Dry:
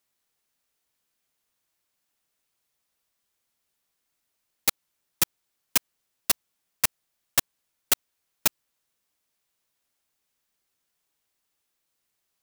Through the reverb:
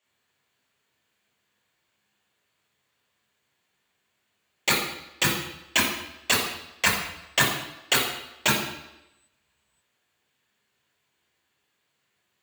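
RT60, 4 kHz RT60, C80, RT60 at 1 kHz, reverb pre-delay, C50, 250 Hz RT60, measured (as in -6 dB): 0.90 s, 0.90 s, 6.5 dB, 0.90 s, 20 ms, 3.5 dB, 0.90 s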